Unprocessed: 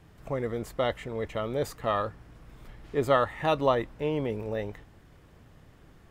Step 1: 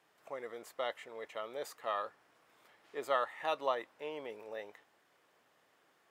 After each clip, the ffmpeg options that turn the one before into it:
-af "highpass=580,volume=0.447"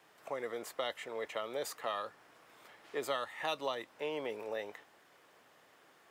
-filter_complex "[0:a]acrossover=split=250|3000[s0][s1][s2];[s1]acompressor=threshold=0.00794:ratio=6[s3];[s0][s3][s2]amix=inputs=3:normalize=0,volume=2.24"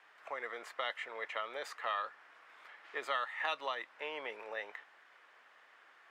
-af "bandpass=f=1700:t=q:w=1.2:csg=0,volume=1.88"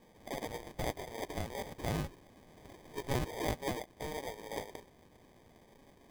-af "acrusher=samples=32:mix=1:aa=0.000001,volume=1.19"

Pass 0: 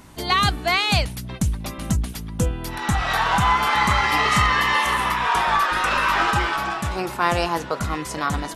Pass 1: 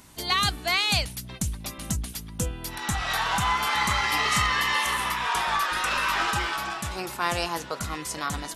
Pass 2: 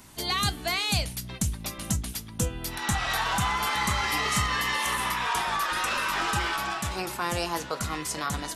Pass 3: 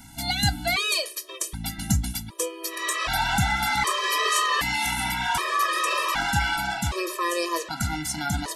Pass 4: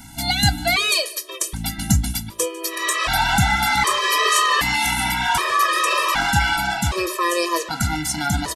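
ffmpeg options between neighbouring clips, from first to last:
-af "highshelf=f=2700:g=10,volume=0.398"
-filter_complex "[0:a]flanger=delay=8.5:depth=1.5:regen=-77:speed=0.37:shape=triangular,acrossover=split=570|6000[s0][s1][s2];[s1]alimiter=level_in=1.12:limit=0.0631:level=0:latency=1:release=168,volume=0.891[s3];[s0][s3][s2]amix=inputs=3:normalize=0,volume=1.88"
-af "afftfilt=real='re*gt(sin(2*PI*0.65*pts/sr)*(1-2*mod(floor(b*sr/1024/330),2)),0)':imag='im*gt(sin(2*PI*0.65*pts/sr)*(1-2*mod(floor(b*sr/1024/330),2)),0)':win_size=1024:overlap=0.75,volume=2"
-af "aecho=1:1:149:0.0891,volume=1.88"

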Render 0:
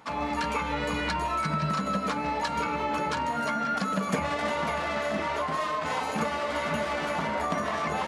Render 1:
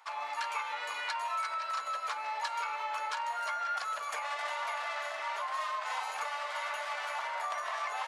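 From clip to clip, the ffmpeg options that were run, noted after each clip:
-af "highpass=f=750:w=0.5412,highpass=f=750:w=1.3066,volume=0.596"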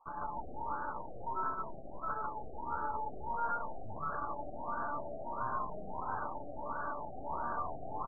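-af "aecho=1:1:145.8|218.7:1|0.251,aeval=exprs='0.119*(cos(1*acos(clip(val(0)/0.119,-1,1)))-cos(1*PI/2))+0.0168*(cos(8*acos(clip(val(0)/0.119,-1,1)))-cos(8*PI/2))':c=same,afftfilt=real='re*lt(b*sr/1024,790*pow(1700/790,0.5+0.5*sin(2*PI*1.5*pts/sr)))':imag='im*lt(b*sr/1024,790*pow(1700/790,0.5+0.5*sin(2*PI*1.5*pts/sr)))':win_size=1024:overlap=0.75,volume=0.631"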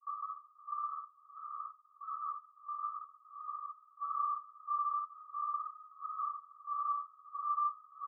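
-filter_complex "[0:a]asoftclip=type=tanh:threshold=0.0126,asuperpass=centerf=1200:order=20:qfactor=7.2,asplit=2[s0][s1];[s1]aecho=0:1:51|55:0.501|0.531[s2];[s0][s2]amix=inputs=2:normalize=0,volume=3.98"

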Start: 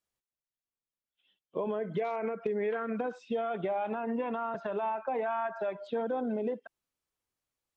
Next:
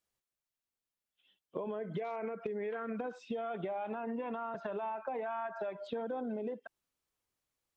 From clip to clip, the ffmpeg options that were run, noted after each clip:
-af "acompressor=threshold=0.0141:ratio=4,volume=1.12"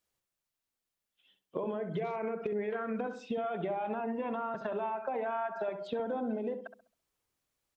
-filter_complex "[0:a]asplit=2[s0][s1];[s1]adelay=67,lowpass=f=1000:p=1,volume=0.447,asplit=2[s2][s3];[s3]adelay=67,lowpass=f=1000:p=1,volume=0.42,asplit=2[s4][s5];[s5]adelay=67,lowpass=f=1000:p=1,volume=0.42,asplit=2[s6][s7];[s7]adelay=67,lowpass=f=1000:p=1,volume=0.42,asplit=2[s8][s9];[s9]adelay=67,lowpass=f=1000:p=1,volume=0.42[s10];[s0][s2][s4][s6][s8][s10]amix=inputs=6:normalize=0,volume=1.41"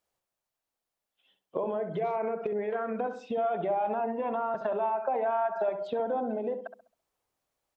-af "equalizer=f=710:w=0.95:g=9,volume=0.841"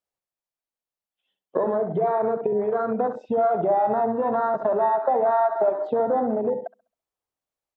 -af "afwtdn=0.0178,volume=2.51"

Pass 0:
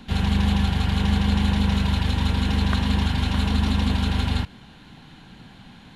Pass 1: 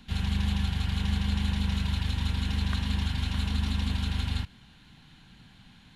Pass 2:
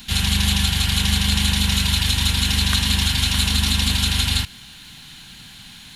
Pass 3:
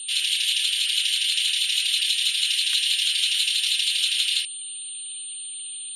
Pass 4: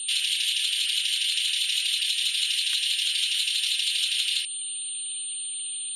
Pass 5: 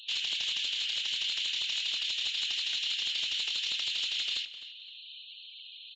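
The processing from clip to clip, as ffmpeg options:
-af "equalizer=f=500:t=o:w=2.6:g=-9.5,volume=0.562"
-af "crystalizer=i=7:c=0,volume=2.11"
-af "aeval=exprs='val(0)+0.0501*sin(2*PI*9000*n/s)':c=same,highpass=f=2900:t=q:w=3,afftfilt=real='re*gte(hypot(re,im),0.02)':imag='im*gte(hypot(re,im),0.02)':win_size=1024:overlap=0.75,volume=0.447"
-af "acompressor=threshold=0.0631:ratio=6,volume=1.26"
-filter_complex "[0:a]aeval=exprs='0.119*(abs(mod(val(0)/0.119+3,4)-2)-1)':c=same,asplit=2[s0][s1];[s1]adelay=258,lowpass=f=4000:p=1,volume=0.224,asplit=2[s2][s3];[s3]adelay=258,lowpass=f=4000:p=1,volume=0.24,asplit=2[s4][s5];[s5]adelay=258,lowpass=f=4000:p=1,volume=0.24[s6];[s0][s2][s4][s6]amix=inputs=4:normalize=0,aresample=16000,aresample=44100,volume=0.501"

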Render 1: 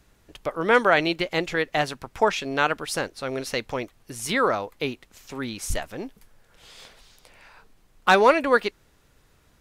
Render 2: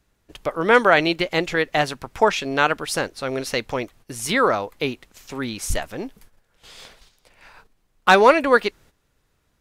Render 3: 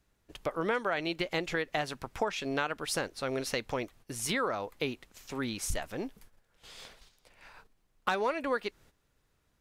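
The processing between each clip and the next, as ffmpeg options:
-af "agate=range=0.282:threshold=0.00282:ratio=16:detection=peak,volume=1.5"
-af "acompressor=threshold=0.0794:ratio=5,volume=0.501"

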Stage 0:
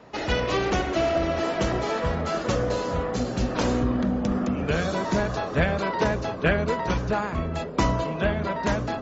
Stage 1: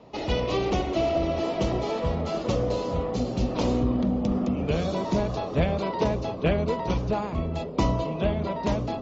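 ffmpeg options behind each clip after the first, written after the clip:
-af "lowpass=5100,equalizer=f=1600:t=o:w=0.69:g=-14.5"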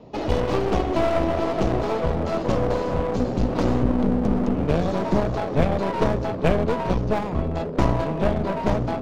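-filter_complex "[0:a]asplit=2[s0][s1];[s1]adynamicsmooth=sensitivity=3:basefreq=630,volume=1.19[s2];[s0][s2]amix=inputs=2:normalize=0,aeval=exprs='clip(val(0),-1,0.0447)':c=same"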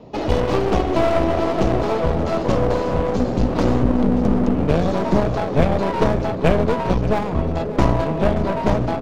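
-af "aecho=1:1:579:0.168,volume=1.5"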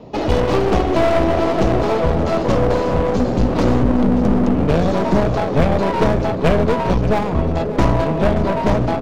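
-af "asoftclip=type=tanh:threshold=0.422,volume=1.5"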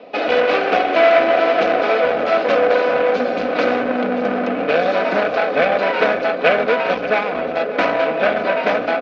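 -af "highpass=500,equalizer=f=640:t=q:w=4:g=6,equalizer=f=940:t=q:w=4:g=-9,equalizer=f=1500:t=q:w=4:g=7,equalizer=f=2400:t=q:w=4:g=8,lowpass=f=4500:w=0.5412,lowpass=f=4500:w=1.3066,aecho=1:1:4:0.47,volume=1.33"

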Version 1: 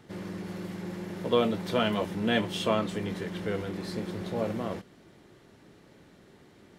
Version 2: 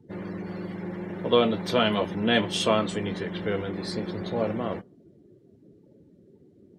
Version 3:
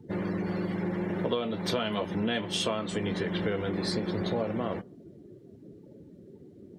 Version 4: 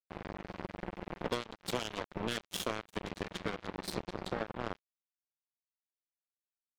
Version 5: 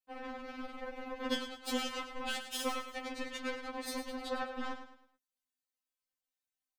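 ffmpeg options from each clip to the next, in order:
-af "afftdn=nr=28:nf=-50,bass=f=250:g=-2,treble=f=4000:g=7,volume=1.58"
-af "acompressor=threshold=0.0282:ratio=12,volume=1.78"
-af "acrusher=bits=3:mix=0:aa=0.5,volume=0.531"
-af "aecho=1:1:106|212|318|424:0.316|0.114|0.041|0.0148,afftfilt=real='re*3.46*eq(mod(b,12),0)':imag='im*3.46*eq(mod(b,12),0)':win_size=2048:overlap=0.75,volume=1.5"

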